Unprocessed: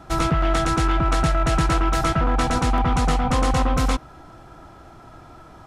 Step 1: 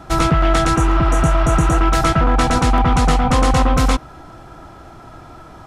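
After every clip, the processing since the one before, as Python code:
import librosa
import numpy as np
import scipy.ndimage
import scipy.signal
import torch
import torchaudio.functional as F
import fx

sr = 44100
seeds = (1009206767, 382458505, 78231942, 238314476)

y = fx.spec_repair(x, sr, seeds[0], start_s=0.78, length_s=0.98, low_hz=780.0, high_hz=5700.0, source='after')
y = F.gain(torch.from_numpy(y), 5.5).numpy()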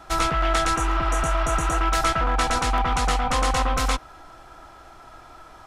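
y = fx.peak_eq(x, sr, hz=150.0, db=-14.0, octaves=3.0)
y = F.gain(torch.from_numpy(y), -2.5).numpy()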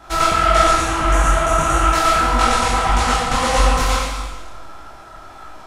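y = fx.rev_schroeder(x, sr, rt60_s=1.3, comb_ms=29, drr_db=-2.0)
y = fx.detune_double(y, sr, cents=57)
y = F.gain(torch.from_numpy(y), 6.0).numpy()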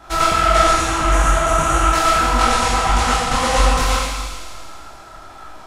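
y = fx.echo_wet_highpass(x, sr, ms=81, feedback_pct=79, hz=3100.0, wet_db=-8)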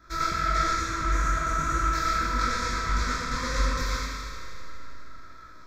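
y = fx.fixed_phaser(x, sr, hz=2900.0, stages=6)
y = fx.rev_spring(y, sr, rt60_s=3.5, pass_ms=(35, 39), chirp_ms=25, drr_db=5.5)
y = F.gain(torch.from_numpy(y), -9.0).numpy()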